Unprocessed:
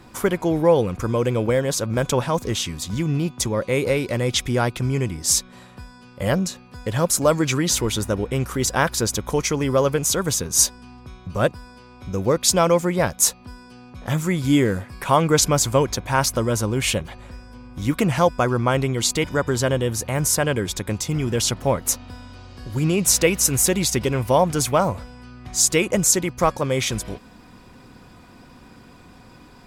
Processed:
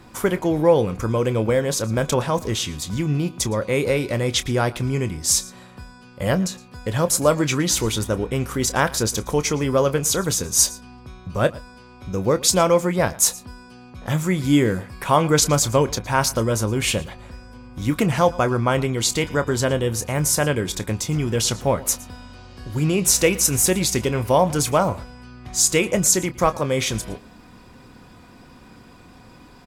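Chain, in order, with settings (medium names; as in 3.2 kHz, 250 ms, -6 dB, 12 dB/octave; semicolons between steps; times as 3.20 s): doubling 27 ms -13 dB; delay 114 ms -21 dB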